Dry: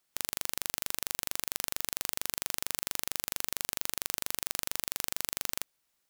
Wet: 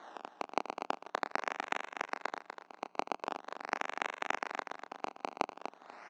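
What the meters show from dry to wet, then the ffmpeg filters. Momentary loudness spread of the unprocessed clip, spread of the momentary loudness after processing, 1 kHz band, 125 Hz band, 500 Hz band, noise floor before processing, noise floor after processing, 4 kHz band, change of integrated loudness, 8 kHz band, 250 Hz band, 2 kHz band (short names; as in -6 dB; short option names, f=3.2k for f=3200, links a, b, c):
0 LU, 9 LU, +8.5 dB, under -10 dB, +6.5 dB, -78 dBFS, -68 dBFS, -12.0 dB, -6.5 dB, -22.0 dB, +2.5 dB, +1.5 dB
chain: -filter_complex "[0:a]tiltshelf=f=850:g=-10,acompressor=threshold=-39dB:ratio=6,acrusher=samples=17:mix=1:aa=0.000001:lfo=1:lforange=17:lforate=0.43,asoftclip=type=tanh:threshold=-27dB,aeval=exprs='val(0)+0.000141*(sin(2*PI*60*n/s)+sin(2*PI*2*60*n/s)/2+sin(2*PI*3*60*n/s)/3+sin(2*PI*4*60*n/s)/4+sin(2*PI*5*60*n/s)/5)':c=same,highpass=f=290:w=0.5412,highpass=f=290:w=1.3066,equalizer=f=340:t=q:w=4:g=-4,equalizer=f=510:t=q:w=4:g=-8,equalizer=f=780:t=q:w=4:g=5,equalizer=f=3.2k:t=q:w=4:g=-7,equalizer=f=4.8k:t=q:w=4:g=-7,lowpass=f=5.3k:w=0.5412,lowpass=f=5.3k:w=1.3066,asplit=2[a][b];[b]adelay=28,volume=-9dB[c];[a][c]amix=inputs=2:normalize=0,aecho=1:1:244|488|732:0.376|0.0977|0.0254,volume=17dB"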